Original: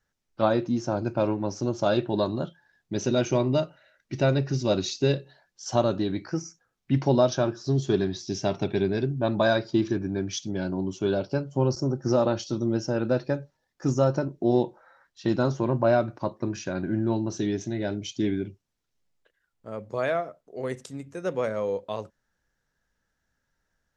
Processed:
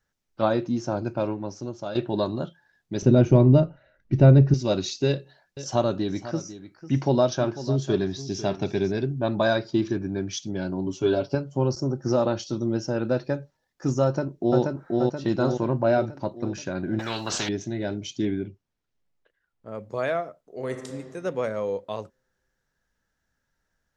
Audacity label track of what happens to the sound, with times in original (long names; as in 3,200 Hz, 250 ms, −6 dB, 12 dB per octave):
0.960000	1.950000	fade out, to −11 dB
3.020000	4.540000	spectral tilt −4 dB per octave
5.070000	8.920000	single-tap delay 497 ms −14 dB
10.860000	11.350000	comb filter 7.2 ms, depth 79%
14.040000	14.610000	delay throw 480 ms, feedback 55%, level −1.5 dB
15.820000	16.430000	notch filter 1,100 Hz, Q 5.7
16.990000	17.490000	every bin compressed towards the loudest bin 4 to 1
18.250000	19.750000	low-pass filter 2,900 Hz 6 dB per octave
20.420000	20.910000	thrown reverb, RT60 1.9 s, DRR 5.5 dB